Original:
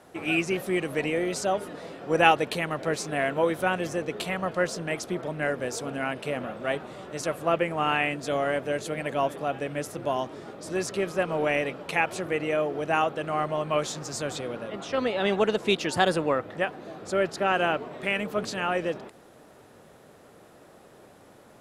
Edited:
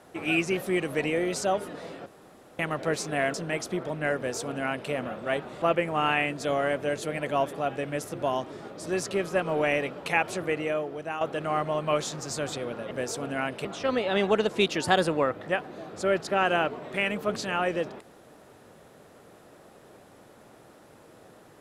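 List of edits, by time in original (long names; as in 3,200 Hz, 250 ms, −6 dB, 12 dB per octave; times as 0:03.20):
0:02.06–0:02.59: fill with room tone
0:03.34–0:04.72: remove
0:05.55–0:06.29: duplicate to 0:14.74
0:07.00–0:07.45: remove
0:12.29–0:13.04: fade out, to −11.5 dB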